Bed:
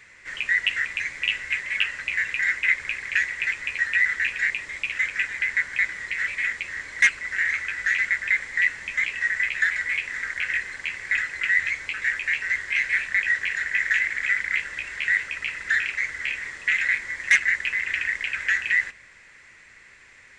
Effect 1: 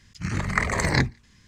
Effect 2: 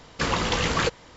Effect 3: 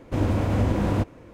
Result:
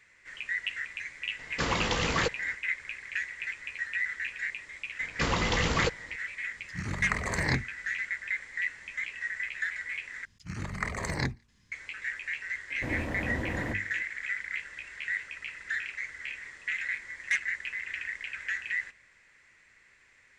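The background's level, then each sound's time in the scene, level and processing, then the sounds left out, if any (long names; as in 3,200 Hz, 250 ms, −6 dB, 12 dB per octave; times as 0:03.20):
bed −10.5 dB
0:01.39: mix in 2 −4.5 dB
0:05.00: mix in 2 −4.5 dB + low-shelf EQ 160 Hz +4.5 dB
0:06.54: mix in 1 −7.5 dB
0:10.25: overwrite with 1 −9.5 dB
0:12.70: mix in 3 −9 dB + mains-hum notches 50/100/150/200/250/300/350/400/450 Hz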